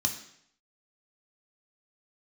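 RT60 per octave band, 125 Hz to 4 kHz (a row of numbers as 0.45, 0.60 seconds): 0.70, 0.70, 0.70, 0.65, 0.70, 0.65 seconds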